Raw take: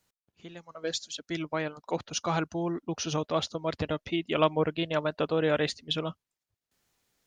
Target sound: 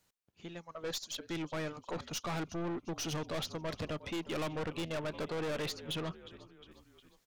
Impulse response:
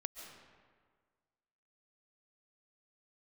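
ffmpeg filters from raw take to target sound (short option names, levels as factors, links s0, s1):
-filter_complex "[0:a]acontrast=37,asplit=5[s0][s1][s2][s3][s4];[s1]adelay=358,afreqshift=-48,volume=0.0668[s5];[s2]adelay=716,afreqshift=-96,volume=0.0376[s6];[s3]adelay=1074,afreqshift=-144,volume=0.0209[s7];[s4]adelay=1432,afreqshift=-192,volume=0.0117[s8];[s0][s5][s6][s7][s8]amix=inputs=5:normalize=0,aeval=exprs='(tanh(28.2*val(0)+0.25)-tanh(0.25))/28.2':c=same,volume=0.562"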